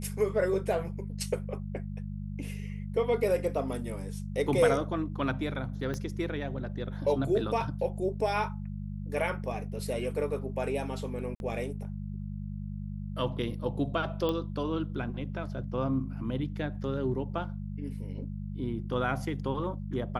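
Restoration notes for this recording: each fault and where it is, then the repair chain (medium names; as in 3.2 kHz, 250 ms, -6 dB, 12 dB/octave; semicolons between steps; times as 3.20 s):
hum 50 Hz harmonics 4 -37 dBFS
5.94 s: pop -23 dBFS
11.35–11.40 s: dropout 51 ms
14.29 s: pop -19 dBFS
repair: de-click; de-hum 50 Hz, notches 4; interpolate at 11.35 s, 51 ms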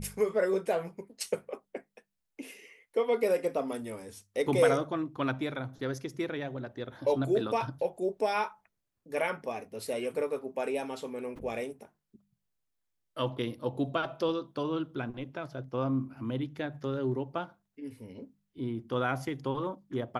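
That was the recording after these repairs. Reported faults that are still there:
5.94 s: pop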